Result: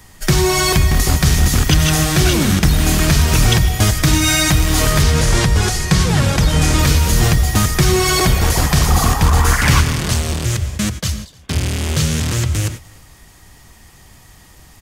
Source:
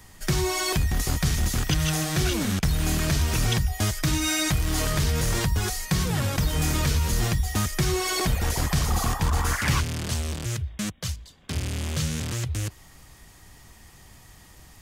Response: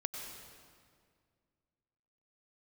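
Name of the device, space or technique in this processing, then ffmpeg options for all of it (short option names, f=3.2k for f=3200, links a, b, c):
keyed gated reverb: -filter_complex "[0:a]asettb=1/sr,asplit=3[a][b][c];[a]atrim=end=5.024[d];[b]atrim=start=5.02:end=6.79,asetpts=PTS-STARTPTS,afade=t=in:d=0.004:c=qsin,afade=t=out:st=1.766:d=0.004:c=qsin,lowpass=9.7k[e];[c]atrim=start=6.786[f];[d][e]acrossfade=d=0.004:c1=hsin:c2=qsin[g];[g][f]acrossfade=d=0.004:c1=qsin:c2=hsin,aecho=1:1:303:0.075,asplit=3[h][i][j];[1:a]atrim=start_sample=2205[k];[i][k]afir=irnorm=-1:irlink=0[l];[j]apad=whole_len=666714[m];[l][m]sidechaingate=range=-33dB:threshold=-38dB:ratio=16:detection=peak,volume=-1.5dB[n];[h][n]amix=inputs=2:normalize=0,volume=5.5dB"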